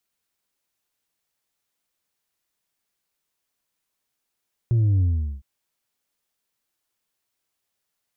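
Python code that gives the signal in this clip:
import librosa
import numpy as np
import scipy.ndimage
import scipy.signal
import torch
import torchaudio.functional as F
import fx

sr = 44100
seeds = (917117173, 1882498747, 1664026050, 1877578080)

y = fx.sub_drop(sr, level_db=-16.5, start_hz=120.0, length_s=0.71, drive_db=3.0, fade_s=0.41, end_hz=65.0)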